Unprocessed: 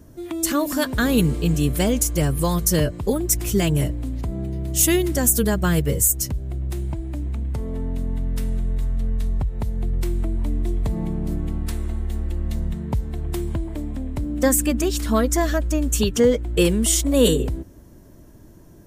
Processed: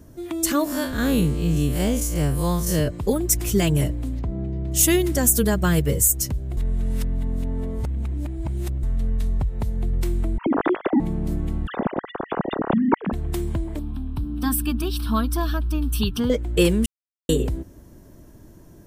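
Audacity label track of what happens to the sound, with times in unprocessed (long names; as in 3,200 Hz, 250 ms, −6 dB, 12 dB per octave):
0.640000	2.880000	spectrum smeared in time width 98 ms
4.190000	4.720000	head-to-tape spacing loss at 10 kHz 21 dB
6.570000	8.830000	reverse
10.380000	11.000000	three sine waves on the formant tracks
11.670000	13.130000	three sine waves on the formant tracks
13.790000	16.300000	phaser with its sweep stopped centre 2,000 Hz, stages 6
16.860000	17.290000	silence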